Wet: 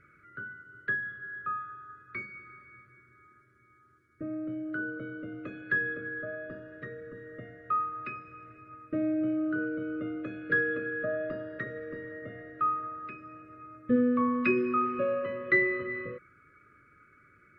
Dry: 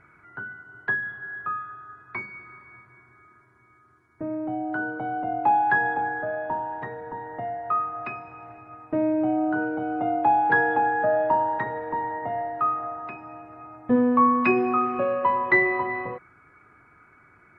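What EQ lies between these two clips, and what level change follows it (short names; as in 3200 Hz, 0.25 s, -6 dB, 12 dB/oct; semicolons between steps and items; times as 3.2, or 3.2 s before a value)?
elliptic band-stop 590–1200 Hz, stop band 40 dB; -4.0 dB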